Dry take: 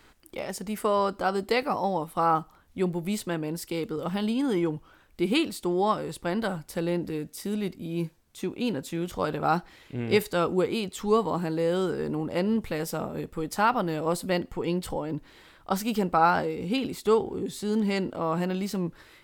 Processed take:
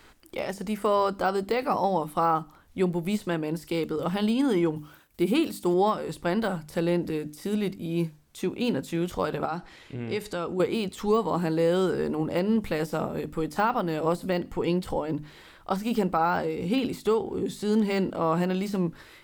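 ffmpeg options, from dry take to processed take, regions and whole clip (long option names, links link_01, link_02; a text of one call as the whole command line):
ffmpeg -i in.wav -filter_complex "[0:a]asettb=1/sr,asplit=3[link_01][link_02][link_03];[link_01]atrim=end=4.764[link_04];[link_02]atrim=start=4.76:end=5.74,asetpts=PTS-STARTPTS,afade=type=in:duration=0.004:curve=qsin,afade=type=out:start_time=0.976:duration=0.004:curve=qsin,aemphasis=mode=production:type=50kf,agate=range=-33dB:threshold=-54dB:ratio=3:release=100:detection=peak,highpass=47[link_05];[link_03]atrim=start=5.736[link_06];[link_04][link_05]acrossfade=duration=0.004:curve1=hsin:curve2=qsin[link_07];[link_07][link_06]acrossfade=duration=0.004:curve1=qsin:curve2=hsin,asettb=1/sr,asplit=3[link_08][link_09][link_10];[link_08]atrim=end=9.454[link_11];[link_09]atrim=start=9.45:end=10.6,asetpts=PTS-STARTPTS,afade=type=in:duration=0.004:curve=qsin,afade=type=out:start_time=1.146:duration=0.004:curve=qsin,lowpass=10000,acompressor=threshold=-33dB:ratio=2.5:attack=3.2:release=140:knee=1:detection=peak[link_12];[link_10]atrim=start=10.596[link_13];[link_11][link_12]acrossfade=duration=0.004:curve1=hsin:curve2=qsin[link_14];[link_14][link_13]acrossfade=duration=0.004:curve1=qsin:curve2=hsin,deesser=0.95,bandreject=frequency=50:width_type=h:width=6,bandreject=frequency=100:width_type=h:width=6,bandreject=frequency=150:width_type=h:width=6,bandreject=frequency=200:width_type=h:width=6,bandreject=frequency=250:width_type=h:width=6,bandreject=frequency=300:width_type=h:width=6,alimiter=limit=-17dB:level=0:latency=1:release=257,volume=3dB" out.wav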